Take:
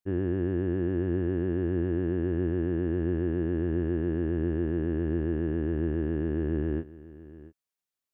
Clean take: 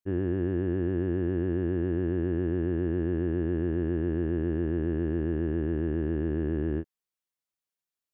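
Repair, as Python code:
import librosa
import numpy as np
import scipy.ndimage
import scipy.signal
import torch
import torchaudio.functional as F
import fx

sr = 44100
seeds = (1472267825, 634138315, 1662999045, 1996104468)

y = fx.fix_echo_inverse(x, sr, delay_ms=684, level_db=-18.0)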